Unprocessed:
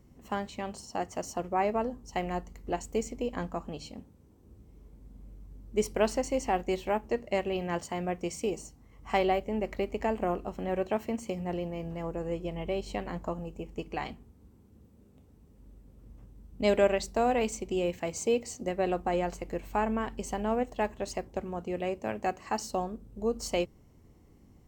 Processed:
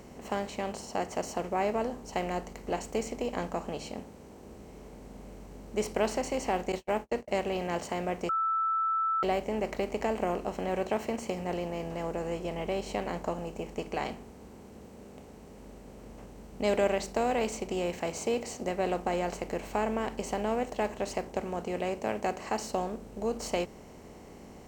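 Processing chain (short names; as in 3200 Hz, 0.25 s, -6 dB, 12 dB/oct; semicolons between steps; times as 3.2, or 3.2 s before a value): per-bin compression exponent 0.6; 6.72–7.28 gate -28 dBFS, range -42 dB; 8.29–9.23 bleep 1320 Hz -21 dBFS; gain -4.5 dB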